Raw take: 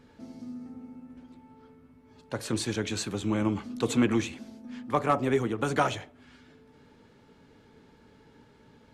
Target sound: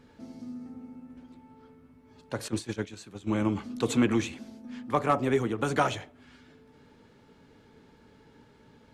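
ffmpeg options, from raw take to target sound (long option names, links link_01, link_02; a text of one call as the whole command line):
ffmpeg -i in.wav -filter_complex "[0:a]asettb=1/sr,asplit=3[link_01][link_02][link_03];[link_01]atrim=end=2.484[link_04];[link_02]atrim=start=2.48:end=3.4,asetpts=PTS-STARTPTS,afade=type=in:duration=0.004:curve=qsin,afade=type=out:start_time=0.916:duration=0.004:curve=qsin,agate=range=-14dB:threshold=-28dB:ratio=16:detection=peak[link_05];[link_03]atrim=start=3.396[link_06];[link_04][link_05]acrossfade=duration=0.004:curve1=hsin:curve2=qsin[link_07];[link_07][link_06]acrossfade=duration=0.004:curve1=qsin:curve2=hsin" out.wav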